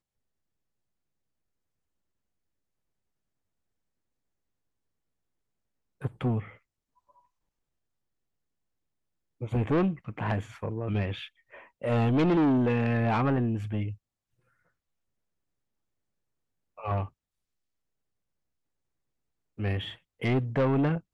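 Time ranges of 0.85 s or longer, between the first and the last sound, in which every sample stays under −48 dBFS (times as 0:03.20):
0:06.55–0:09.41
0:13.96–0:16.78
0:17.09–0:19.58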